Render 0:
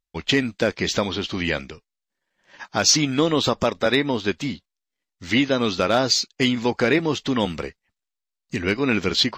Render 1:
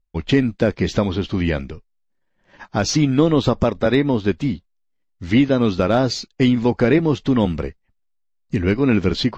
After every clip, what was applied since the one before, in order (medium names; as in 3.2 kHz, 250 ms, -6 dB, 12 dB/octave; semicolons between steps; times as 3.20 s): tilt EQ -3 dB/octave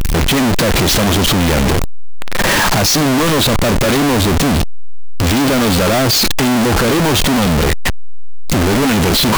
one-bit comparator; trim +7 dB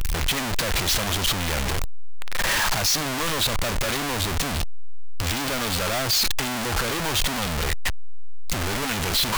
peaking EQ 250 Hz -11 dB 2.7 oct; trim -7.5 dB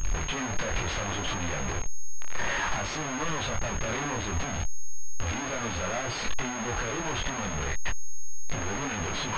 chorus voices 2, 0.62 Hz, delay 23 ms, depth 4 ms; class-D stage that switches slowly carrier 6.5 kHz; trim -2 dB